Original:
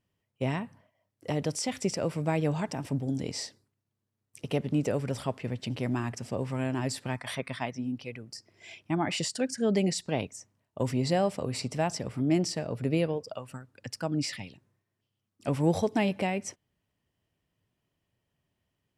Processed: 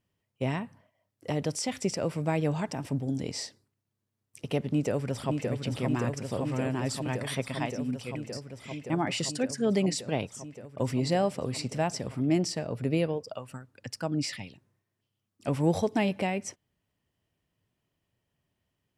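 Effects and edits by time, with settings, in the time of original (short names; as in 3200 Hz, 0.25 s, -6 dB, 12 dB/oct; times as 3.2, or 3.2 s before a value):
4.66–5.52 echo throw 0.57 s, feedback 85%, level -4.5 dB
7.15–8.18 tone controls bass +1 dB, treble +4 dB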